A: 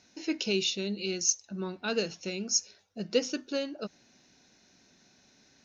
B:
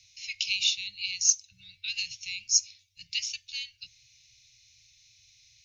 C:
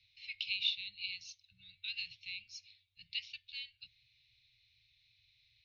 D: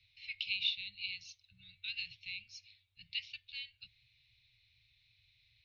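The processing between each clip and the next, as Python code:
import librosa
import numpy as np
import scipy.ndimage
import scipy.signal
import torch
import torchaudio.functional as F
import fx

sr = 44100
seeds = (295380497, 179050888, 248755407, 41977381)

y1 = scipy.signal.sosfilt(scipy.signal.cheby1(5, 1.0, [120.0, 2200.0], 'bandstop', fs=sr, output='sos'), x)
y1 = F.gain(torch.from_numpy(y1), 5.5).numpy()
y2 = scipy.signal.sosfilt(scipy.signal.ellip(4, 1.0, 70, 4000.0, 'lowpass', fs=sr, output='sos'), y1)
y2 = F.gain(torch.from_numpy(y2), -6.5).numpy()
y3 = fx.high_shelf(y2, sr, hz=3600.0, db=-10.0)
y3 = F.gain(torch.from_numpy(y3), 4.5).numpy()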